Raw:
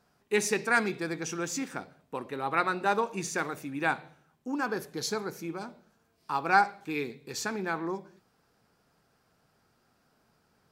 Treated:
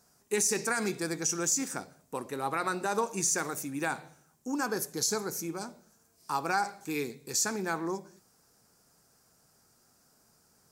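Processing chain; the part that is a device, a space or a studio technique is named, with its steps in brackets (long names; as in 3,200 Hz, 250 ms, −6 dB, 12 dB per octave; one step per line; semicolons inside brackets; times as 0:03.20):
over-bright horn tweeter (high shelf with overshoot 4,700 Hz +12 dB, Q 1.5; brickwall limiter −18 dBFS, peak gain reduction 10 dB)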